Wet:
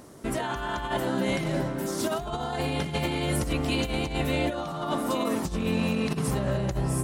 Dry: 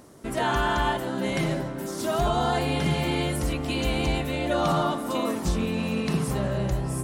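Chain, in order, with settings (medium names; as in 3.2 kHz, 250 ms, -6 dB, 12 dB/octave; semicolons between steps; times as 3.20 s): compressor with a negative ratio -27 dBFS, ratio -0.5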